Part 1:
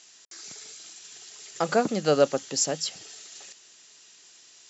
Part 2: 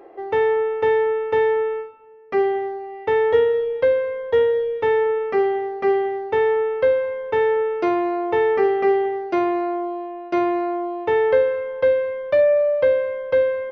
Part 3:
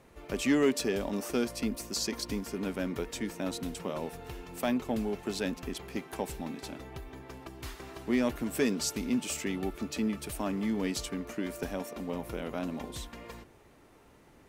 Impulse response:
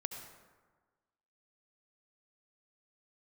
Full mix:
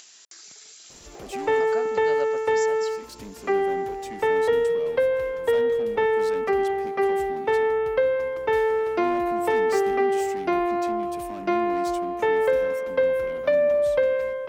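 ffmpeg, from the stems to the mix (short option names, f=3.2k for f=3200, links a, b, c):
-filter_complex "[0:a]volume=-10.5dB,asplit=2[a][b];[1:a]adelay=1150,volume=1dB[c];[2:a]asoftclip=type=tanh:threshold=-33dB,adelay=900,volume=-2dB[d];[b]apad=whole_len=678581[e];[d][e]sidechaincompress=threshold=-50dB:ratio=8:attack=16:release=229[f];[a][c]amix=inputs=2:normalize=0,lowshelf=f=360:g=-6,acompressor=threshold=-19dB:ratio=2.5,volume=0dB[g];[f][g]amix=inputs=2:normalize=0,acompressor=mode=upward:threshold=-37dB:ratio=2.5"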